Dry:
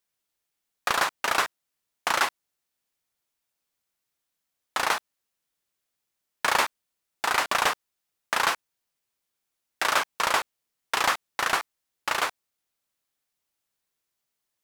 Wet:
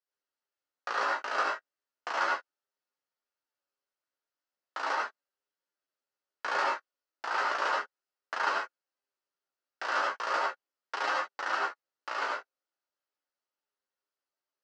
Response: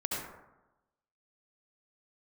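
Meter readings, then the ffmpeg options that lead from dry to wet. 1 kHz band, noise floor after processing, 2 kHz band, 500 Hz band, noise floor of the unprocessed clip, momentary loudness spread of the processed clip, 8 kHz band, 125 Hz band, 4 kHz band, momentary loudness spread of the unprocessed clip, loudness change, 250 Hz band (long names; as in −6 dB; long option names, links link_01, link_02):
−4.0 dB, below −85 dBFS, −5.0 dB, −3.5 dB, −83 dBFS, 11 LU, −17.0 dB, below −20 dB, −11.0 dB, 10 LU, −5.5 dB, −7.5 dB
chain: -filter_complex "[0:a]highpass=frequency=280:width=0.5412,highpass=frequency=280:width=1.3066,equalizer=frequency=530:width_type=q:width=4:gain=3,equalizer=frequency=1400:width_type=q:width=4:gain=4,equalizer=frequency=2300:width_type=q:width=4:gain=-6,equalizer=frequency=3600:width_type=q:width=4:gain=-7,lowpass=frequency=5400:width=0.5412,lowpass=frequency=5400:width=1.3066[link_01];[1:a]atrim=start_sample=2205,afade=type=out:start_time=0.16:duration=0.01,atrim=end_sample=7497[link_02];[link_01][link_02]afir=irnorm=-1:irlink=0,flanger=delay=9.6:depth=9.2:regen=-7:speed=0.36:shape=sinusoidal,volume=-6dB"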